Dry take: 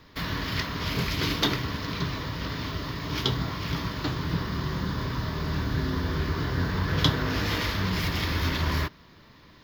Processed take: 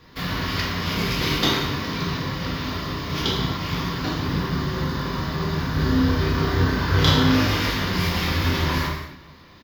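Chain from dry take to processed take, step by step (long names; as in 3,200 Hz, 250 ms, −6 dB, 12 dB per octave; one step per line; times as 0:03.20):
0:05.72–0:07.46: double-tracking delay 31 ms −2 dB
slap from a distant wall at 65 metres, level −23 dB
reverb whose tail is shaped and stops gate 310 ms falling, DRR −3.5 dB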